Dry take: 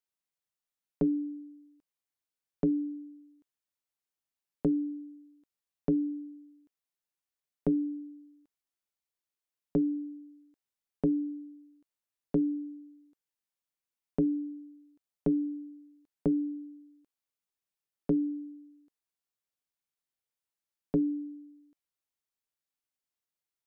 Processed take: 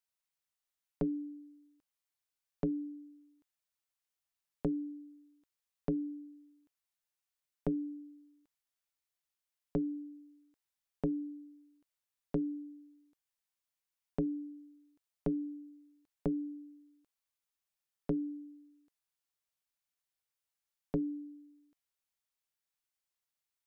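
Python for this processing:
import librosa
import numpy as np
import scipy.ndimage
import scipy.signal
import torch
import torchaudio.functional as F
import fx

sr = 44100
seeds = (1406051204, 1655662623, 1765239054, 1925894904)

y = fx.peak_eq(x, sr, hz=280.0, db=-8.0, octaves=1.9)
y = y * 10.0 ** (1.0 / 20.0)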